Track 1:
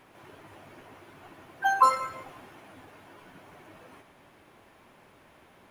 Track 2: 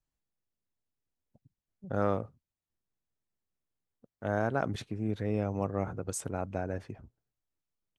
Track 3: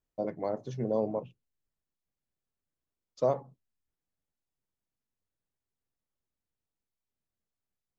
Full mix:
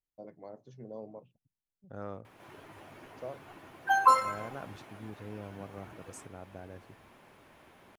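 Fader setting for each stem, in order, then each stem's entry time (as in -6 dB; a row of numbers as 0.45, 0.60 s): -1.0, -12.5, -14.5 dB; 2.25, 0.00, 0.00 s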